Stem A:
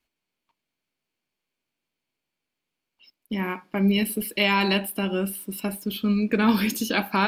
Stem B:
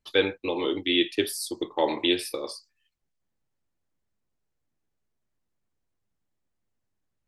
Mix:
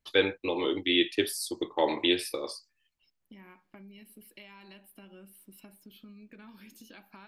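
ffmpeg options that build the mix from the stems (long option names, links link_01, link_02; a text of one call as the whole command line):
ffmpeg -i stem1.wav -i stem2.wav -filter_complex "[0:a]bandreject=frequency=450:width=12,acompressor=threshold=-32dB:ratio=8,volume=-16.5dB[link_01];[1:a]volume=-2dB[link_02];[link_01][link_02]amix=inputs=2:normalize=0,equalizer=frequency=1900:width_type=o:width=0.77:gain=2" out.wav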